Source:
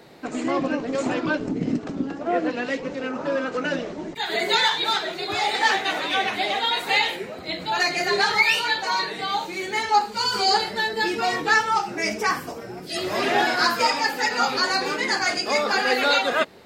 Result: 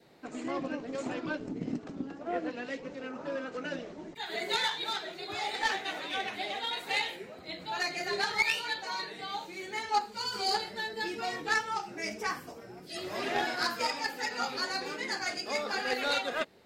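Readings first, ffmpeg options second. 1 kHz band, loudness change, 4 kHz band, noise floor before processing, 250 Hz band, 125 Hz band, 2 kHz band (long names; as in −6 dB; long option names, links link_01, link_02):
−11.5 dB, −11.0 dB, −10.5 dB, −37 dBFS, −11.0 dB, −11.0 dB, −10.5 dB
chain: -af "adynamicequalizer=threshold=0.0141:dfrequency=1100:dqfactor=2:tfrequency=1100:tqfactor=2:attack=5:release=100:ratio=0.375:range=1.5:mode=cutabove:tftype=bell,aeval=exprs='0.473*(cos(1*acos(clip(val(0)/0.473,-1,1)))-cos(1*PI/2))+0.0841*(cos(3*acos(clip(val(0)/0.473,-1,1)))-cos(3*PI/2))':channel_layout=same,volume=-5dB"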